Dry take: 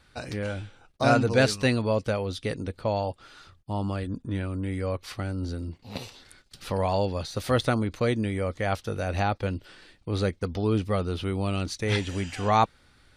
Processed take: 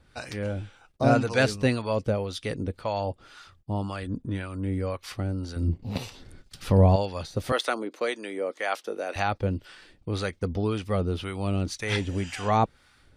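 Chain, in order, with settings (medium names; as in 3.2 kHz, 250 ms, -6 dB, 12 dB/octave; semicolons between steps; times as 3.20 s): peaking EQ 4.1 kHz -3 dB 0.24 oct; harmonic tremolo 1.9 Hz, depth 70%, crossover 710 Hz; 5.56–6.96 s: bass shelf 400 Hz +11.5 dB; 7.52–9.16 s: high-pass 310 Hz 24 dB/octave; trim +3 dB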